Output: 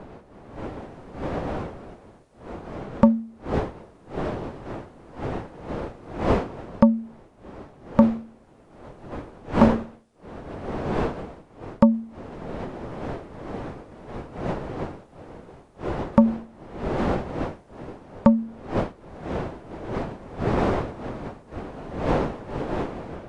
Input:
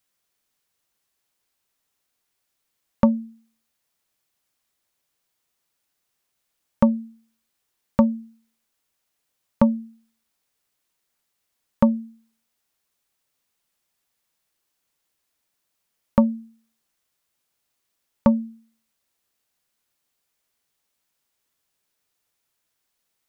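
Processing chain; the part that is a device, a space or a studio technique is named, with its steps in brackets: smartphone video outdoors (wind noise 560 Hz -35 dBFS; level rider gain up to 5.5 dB; AAC 48 kbps 22.05 kHz)

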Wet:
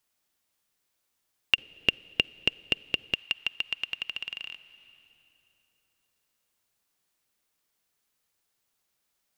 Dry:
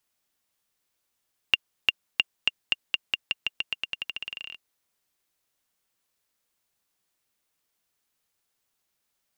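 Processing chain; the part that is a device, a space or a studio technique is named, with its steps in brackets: compressed reverb return (on a send at -11 dB: reverberation RT60 3.0 s, pre-delay 44 ms + compression 6:1, threshold -40 dBFS, peak gain reduction 13.5 dB); 1.54–3.14 s: on the sum: resonant low shelf 650 Hz +11.5 dB, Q 1.5

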